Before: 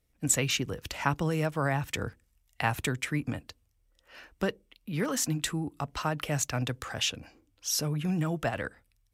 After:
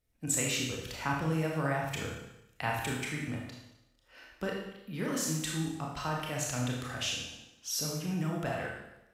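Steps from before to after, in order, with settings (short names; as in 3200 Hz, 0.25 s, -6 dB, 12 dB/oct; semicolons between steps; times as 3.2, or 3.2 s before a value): Schroeder reverb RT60 0.89 s, combs from 25 ms, DRR -2 dB; gain -7 dB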